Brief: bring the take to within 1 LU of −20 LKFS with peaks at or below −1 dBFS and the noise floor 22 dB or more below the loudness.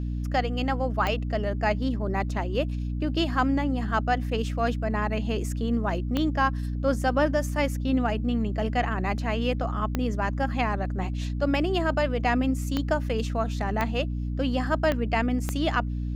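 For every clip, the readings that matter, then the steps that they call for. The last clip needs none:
number of clicks 7; mains hum 60 Hz; hum harmonics up to 300 Hz; level of the hum −27 dBFS; integrated loudness −27.0 LKFS; sample peak −11.0 dBFS; target loudness −20.0 LKFS
→ click removal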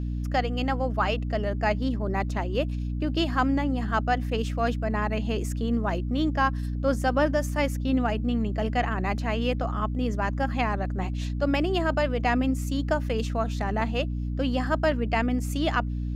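number of clicks 1; mains hum 60 Hz; hum harmonics up to 300 Hz; level of the hum −27 dBFS
→ hum removal 60 Hz, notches 5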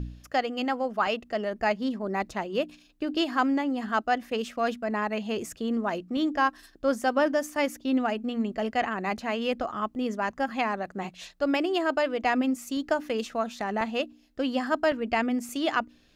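mains hum none found; integrated loudness −28.5 LKFS; sample peak −12.0 dBFS; target loudness −20.0 LKFS
→ level +8.5 dB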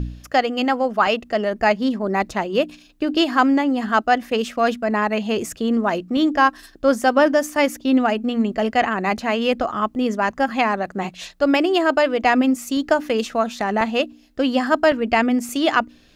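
integrated loudness −20.0 LKFS; sample peak −3.5 dBFS; background noise floor −50 dBFS

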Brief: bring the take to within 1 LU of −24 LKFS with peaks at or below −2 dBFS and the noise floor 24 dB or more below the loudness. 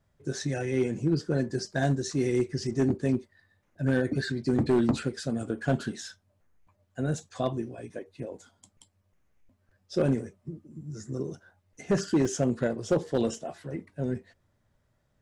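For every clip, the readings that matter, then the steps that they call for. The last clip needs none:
share of clipped samples 0.5%; peaks flattened at −17.5 dBFS; number of dropouts 1; longest dropout 4.1 ms; integrated loudness −29.5 LKFS; sample peak −17.5 dBFS; target loudness −24.0 LKFS
→ clipped peaks rebuilt −17.5 dBFS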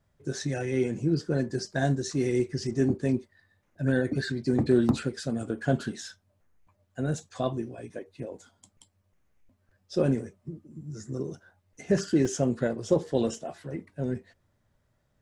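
share of clipped samples 0.0%; number of dropouts 1; longest dropout 4.1 ms
→ repair the gap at 0:12.25, 4.1 ms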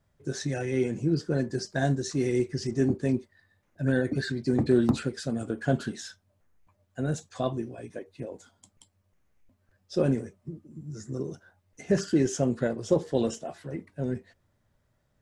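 number of dropouts 0; integrated loudness −29.0 LKFS; sample peak −10.5 dBFS; target loudness −24.0 LKFS
→ level +5 dB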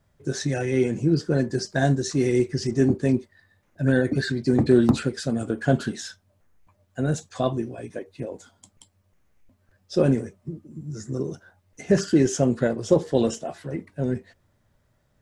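integrated loudness −24.0 LKFS; sample peak −5.5 dBFS; background noise floor −67 dBFS

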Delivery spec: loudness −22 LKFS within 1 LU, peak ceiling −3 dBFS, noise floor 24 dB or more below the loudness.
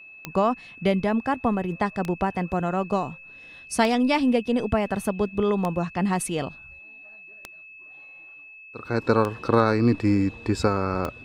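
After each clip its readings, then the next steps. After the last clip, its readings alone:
number of clicks 7; interfering tone 2,600 Hz; level of the tone −43 dBFS; integrated loudness −24.5 LKFS; sample peak −4.0 dBFS; target loudness −22.0 LKFS
→ click removal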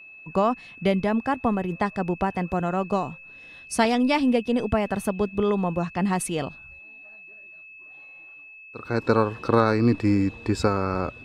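number of clicks 0; interfering tone 2,600 Hz; level of the tone −43 dBFS
→ notch filter 2,600 Hz, Q 30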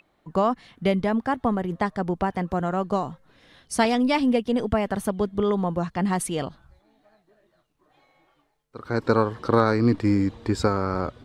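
interfering tone none found; integrated loudness −24.5 LKFS; sample peak −4.0 dBFS; target loudness −22.0 LKFS
→ level +2.5 dB
brickwall limiter −3 dBFS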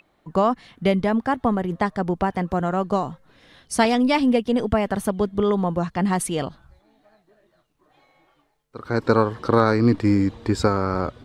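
integrated loudness −22.0 LKFS; sample peak −3.0 dBFS; background noise floor −65 dBFS

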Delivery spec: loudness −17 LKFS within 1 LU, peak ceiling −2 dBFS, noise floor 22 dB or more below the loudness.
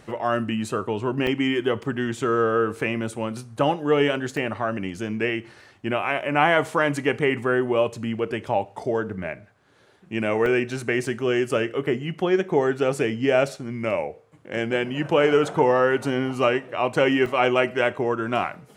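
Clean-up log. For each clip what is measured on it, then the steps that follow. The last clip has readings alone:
number of dropouts 6; longest dropout 1.1 ms; integrated loudness −23.5 LKFS; sample peak −4.0 dBFS; target loudness −17.0 LKFS
→ repair the gap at 0:01.27/0:01.83/0:04.37/0:10.46/0:11.06/0:17.26, 1.1 ms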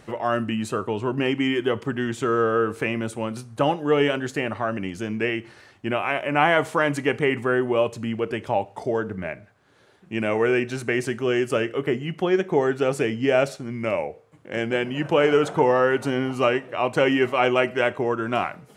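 number of dropouts 0; integrated loudness −23.5 LKFS; sample peak −4.0 dBFS; target loudness −17.0 LKFS
→ level +6.5 dB
brickwall limiter −2 dBFS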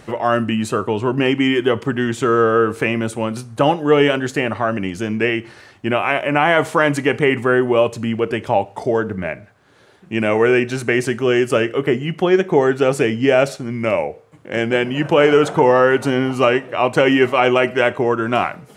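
integrated loudness −17.5 LKFS; sample peak −2.0 dBFS; background noise floor −47 dBFS

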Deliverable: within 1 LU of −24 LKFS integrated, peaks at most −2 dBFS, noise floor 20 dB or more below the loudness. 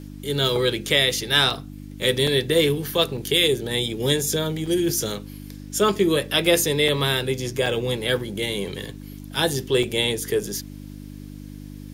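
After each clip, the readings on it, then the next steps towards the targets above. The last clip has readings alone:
number of dropouts 8; longest dropout 4.0 ms; mains hum 50 Hz; hum harmonics up to 300 Hz; level of the hum −35 dBFS; integrated loudness −22.0 LKFS; sample peak −4.5 dBFS; target loudness −24.0 LKFS
→ repair the gap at 0:01.50/0:02.27/0:03.17/0:04.66/0:06.88/0:07.66/0:08.19/0:09.83, 4 ms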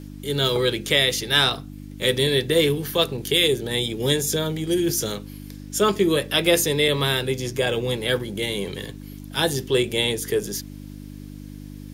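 number of dropouts 0; mains hum 50 Hz; hum harmonics up to 300 Hz; level of the hum −35 dBFS
→ hum removal 50 Hz, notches 6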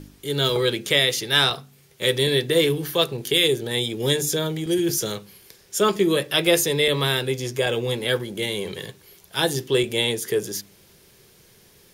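mains hum none found; integrated loudness −22.0 LKFS; sample peak −5.0 dBFS; target loudness −24.0 LKFS
→ level −2 dB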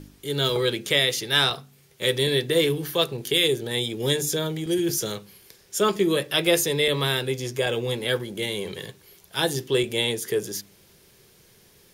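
integrated loudness −24.0 LKFS; sample peak −7.0 dBFS; background noise floor −56 dBFS

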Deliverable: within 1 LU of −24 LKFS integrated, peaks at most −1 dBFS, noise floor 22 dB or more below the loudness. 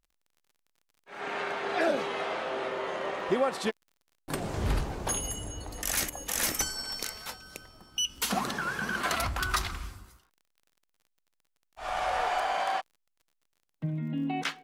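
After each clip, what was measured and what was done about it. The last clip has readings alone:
crackle rate 36 per second; integrated loudness −31.5 LKFS; sample peak −15.0 dBFS; target loudness −24.0 LKFS
→ click removal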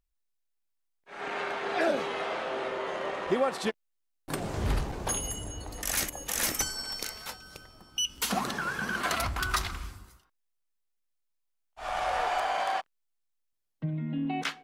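crackle rate 0.27 per second; integrated loudness −31.5 LKFS; sample peak −15.0 dBFS; target loudness −24.0 LKFS
→ level +7.5 dB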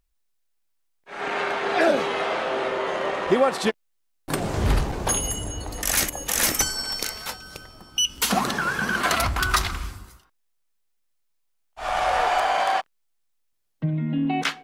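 integrated loudness −24.0 LKFS; sample peak −7.5 dBFS; background noise floor −70 dBFS

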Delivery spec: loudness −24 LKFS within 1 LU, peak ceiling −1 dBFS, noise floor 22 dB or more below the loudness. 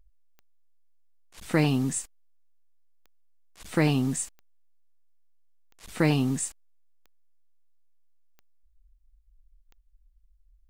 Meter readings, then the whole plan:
number of clicks 8; integrated loudness −27.0 LKFS; sample peak −11.5 dBFS; target loudness −24.0 LKFS
→ click removal
level +3 dB

